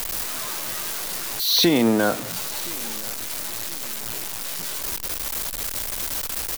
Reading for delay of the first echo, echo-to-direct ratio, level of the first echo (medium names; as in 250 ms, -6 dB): 1020 ms, -21.5 dB, -22.5 dB